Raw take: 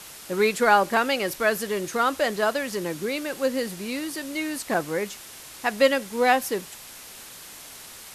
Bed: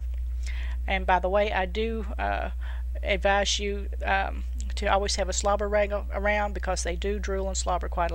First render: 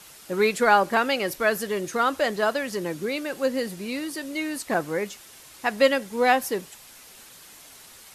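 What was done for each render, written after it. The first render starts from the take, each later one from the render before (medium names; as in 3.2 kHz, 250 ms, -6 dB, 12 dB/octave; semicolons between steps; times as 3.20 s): noise reduction 6 dB, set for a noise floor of -43 dBFS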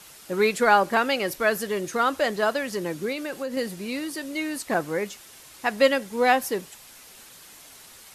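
3.12–3.57 s: compression 5:1, threshold -26 dBFS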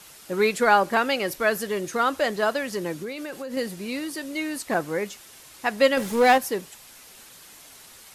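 2.93–3.52 s: compression 3:1, threshold -30 dBFS; 5.97–6.38 s: power-law waveshaper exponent 0.7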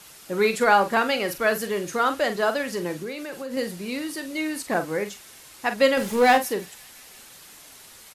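doubling 45 ms -10 dB; feedback echo behind a high-pass 173 ms, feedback 77%, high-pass 3 kHz, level -20 dB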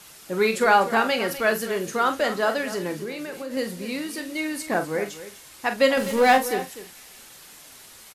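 doubling 27 ms -13 dB; delay 249 ms -14 dB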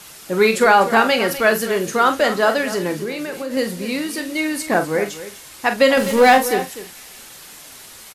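trim +6.5 dB; peak limiter -3 dBFS, peak gain reduction 3 dB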